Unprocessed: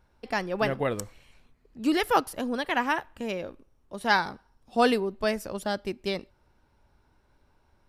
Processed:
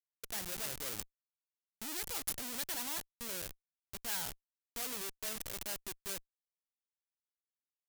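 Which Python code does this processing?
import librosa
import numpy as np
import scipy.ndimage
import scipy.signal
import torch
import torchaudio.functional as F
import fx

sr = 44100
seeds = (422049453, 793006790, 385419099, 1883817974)

y = fx.cheby_harmonics(x, sr, harmonics=(3, 4), levels_db=(-33, -18), full_scale_db=-8.0)
y = fx.schmitt(y, sr, flips_db=-35.0)
y = F.preemphasis(torch.from_numpy(y), 0.9).numpy()
y = y * librosa.db_to_amplitude(1.0)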